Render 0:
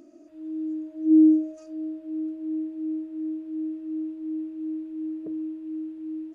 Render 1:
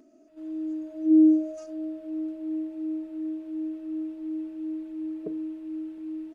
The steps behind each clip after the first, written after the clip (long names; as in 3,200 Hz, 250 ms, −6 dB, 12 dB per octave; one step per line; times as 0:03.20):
noise gate −45 dBFS, range −9 dB
comb filter 4.6 ms, depth 54%
level +4 dB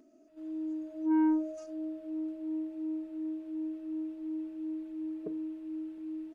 soft clipping −19 dBFS, distortion −10 dB
level −4 dB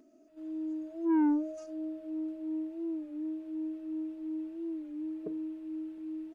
wow of a warped record 33 1/3 rpm, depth 100 cents